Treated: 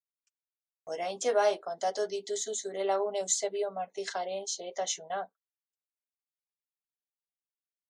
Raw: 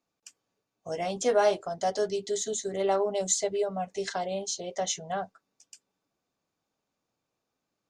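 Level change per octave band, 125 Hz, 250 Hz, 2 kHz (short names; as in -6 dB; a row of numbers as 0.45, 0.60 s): under -10 dB, -8.0 dB, -2.0 dB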